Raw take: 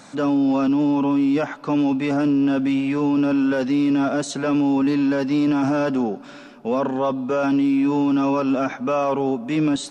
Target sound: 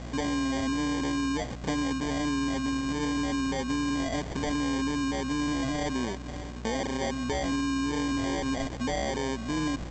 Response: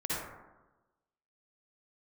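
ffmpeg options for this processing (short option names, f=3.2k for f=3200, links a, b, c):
-af "acompressor=threshold=-32dB:ratio=4,aeval=exprs='val(0)+0.00891*(sin(2*PI*60*n/s)+sin(2*PI*2*60*n/s)/2+sin(2*PI*3*60*n/s)/3+sin(2*PI*4*60*n/s)/4+sin(2*PI*5*60*n/s)/5)':c=same,aresample=16000,acrusher=samples=12:mix=1:aa=0.000001,aresample=44100,volume=2dB"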